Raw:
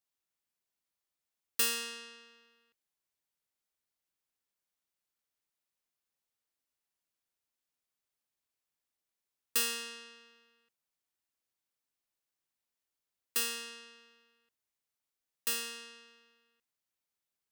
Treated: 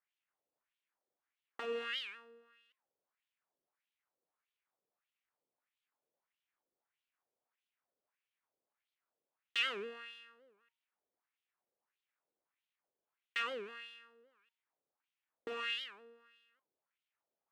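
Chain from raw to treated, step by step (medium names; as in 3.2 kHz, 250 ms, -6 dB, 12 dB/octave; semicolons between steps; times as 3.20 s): median filter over 9 samples; dynamic bell 3 kHz, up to +7 dB, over -55 dBFS, Q 0.7; peak limiter -29.5 dBFS, peak gain reduction 9.5 dB; bass shelf 370 Hz +7.5 dB; de-hum 103.6 Hz, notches 12; wah-wah 1.6 Hz 470–3200 Hz, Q 2.4; warped record 78 rpm, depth 250 cents; trim +9 dB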